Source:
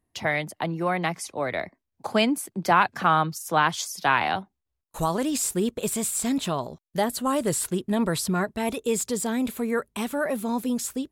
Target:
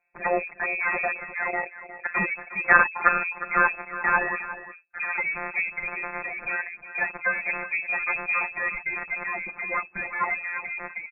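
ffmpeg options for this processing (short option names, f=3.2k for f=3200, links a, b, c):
-filter_complex "[0:a]afftfilt=real='hypot(re,im)*cos(PI*b)':imag='0':win_size=1024:overlap=0.75,aeval=exprs='0.531*(cos(1*acos(clip(val(0)/0.531,-1,1)))-cos(1*PI/2))+0.168*(cos(2*acos(clip(val(0)/0.531,-1,1)))-cos(2*PI/2))+0.168*(cos(4*acos(clip(val(0)/0.531,-1,1)))-cos(4*PI/2))+0.0168*(cos(6*acos(clip(val(0)/0.531,-1,1)))-cos(6*PI/2))+0.0376*(cos(8*acos(clip(val(0)/0.531,-1,1)))-cos(8*PI/2))':c=same,asplit=2[a][b];[b]acompressor=threshold=-36dB:ratio=12,volume=-2dB[c];[a][c]amix=inputs=2:normalize=0,aecho=1:1:359:0.211,crystalizer=i=9.5:c=0,lowpass=f=2.2k:t=q:w=0.5098,lowpass=f=2.2k:t=q:w=0.6013,lowpass=f=2.2k:t=q:w=0.9,lowpass=f=2.2k:t=q:w=2.563,afreqshift=-2600,volume=-1dB"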